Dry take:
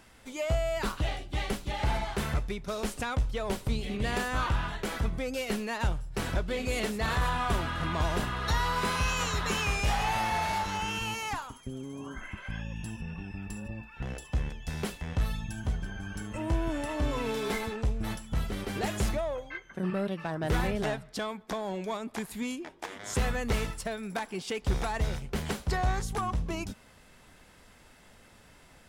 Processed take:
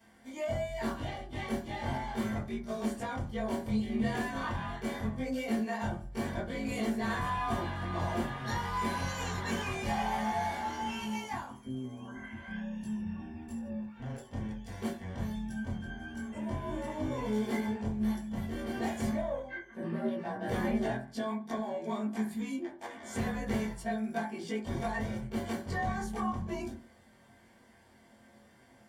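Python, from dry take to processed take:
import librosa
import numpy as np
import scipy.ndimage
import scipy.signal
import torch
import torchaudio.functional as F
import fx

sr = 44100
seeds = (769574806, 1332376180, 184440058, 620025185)

y = fx.frame_reverse(x, sr, frame_ms=46.0)
y = fx.notch_comb(y, sr, f0_hz=1300.0)
y = fx.rev_fdn(y, sr, rt60_s=0.37, lf_ratio=1.25, hf_ratio=0.35, size_ms=26.0, drr_db=-4.0)
y = y * 10.0 ** (-5.5 / 20.0)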